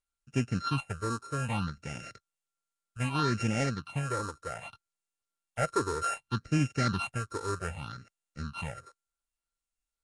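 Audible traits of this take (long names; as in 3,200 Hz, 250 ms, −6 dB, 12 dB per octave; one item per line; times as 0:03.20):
a buzz of ramps at a fixed pitch in blocks of 32 samples
phaser sweep stages 6, 0.64 Hz, lowest notch 180–1,100 Hz
Nellymoser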